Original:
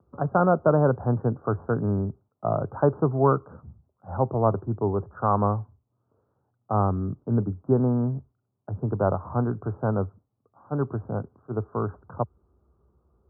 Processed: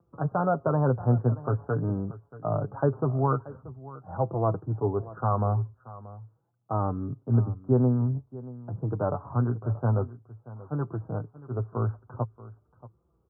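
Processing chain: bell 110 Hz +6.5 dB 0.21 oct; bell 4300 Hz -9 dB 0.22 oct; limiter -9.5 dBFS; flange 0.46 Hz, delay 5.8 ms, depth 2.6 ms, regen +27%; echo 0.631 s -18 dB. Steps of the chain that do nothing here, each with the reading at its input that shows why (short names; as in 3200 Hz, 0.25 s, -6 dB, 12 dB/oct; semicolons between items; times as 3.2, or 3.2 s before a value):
bell 4300 Hz: input band ends at 1400 Hz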